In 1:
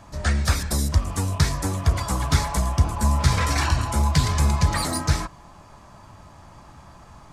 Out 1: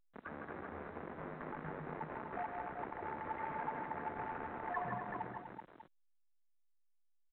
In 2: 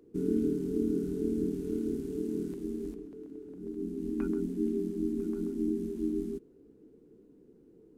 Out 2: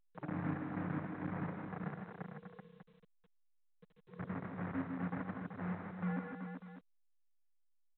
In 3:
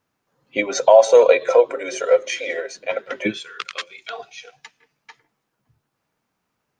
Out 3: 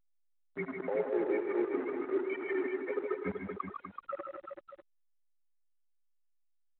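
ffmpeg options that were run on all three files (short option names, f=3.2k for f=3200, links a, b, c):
-af "afftfilt=real='re*gte(hypot(re,im),0.224)':imag='im*gte(hypot(re,im),0.224)':win_size=1024:overlap=0.75,areverse,acompressor=threshold=-30dB:ratio=10,areverse,acrusher=bits=7:dc=4:mix=0:aa=0.000001,aecho=1:1:78|140|158|247|382|595:0.188|0.266|0.531|0.355|0.473|0.224,highpass=f=330:t=q:w=0.5412,highpass=f=330:t=q:w=1.307,lowpass=f=2.1k:t=q:w=0.5176,lowpass=f=2.1k:t=q:w=0.7071,lowpass=f=2.1k:t=q:w=1.932,afreqshift=-130,volume=-1dB" -ar 8000 -c:a pcm_alaw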